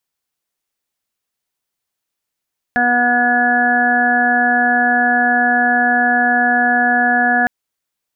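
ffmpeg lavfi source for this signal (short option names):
-f lavfi -i "aevalsrc='0.106*sin(2*PI*243*t)+0.0376*sin(2*PI*486*t)+0.168*sin(2*PI*729*t)+0.0178*sin(2*PI*972*t)+0.0133*sin(2*PI*1215*t)+0.0794*sin(2*PI*1458*t)+0.188*sin(2*PI*1701*t)':d=4.71:s=44100"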